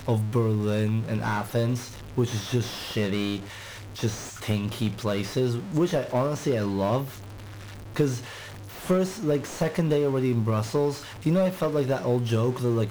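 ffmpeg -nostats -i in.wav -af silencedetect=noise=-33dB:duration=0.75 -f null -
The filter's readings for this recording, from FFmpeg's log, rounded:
silence_start: 7.11
silence_end: 7.96 | silence_duration: 0.85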